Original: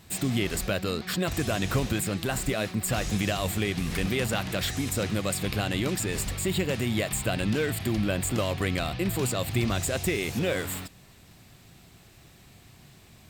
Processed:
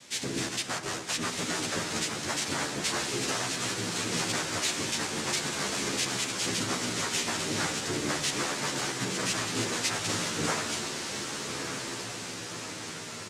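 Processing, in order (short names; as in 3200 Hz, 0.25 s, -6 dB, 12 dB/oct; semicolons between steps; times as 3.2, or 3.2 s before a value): tilt +2.5 dB/oct; in parallel at +3 dB: compressor, threshold -39 dBFS, peak gain reduction 18.5 dB; on the sum: noise vocoder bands 3; diffused feedback echo 1.238 s, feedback 64%, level -5 dB; 8.43–9.24 frequency shift +21 Hz; reverb RT60 1.3 s, pre-delay 8 ms, DRR 9.5 dB; endless flanger 11.6 ms -0.35 Hz; gain -2.5 dB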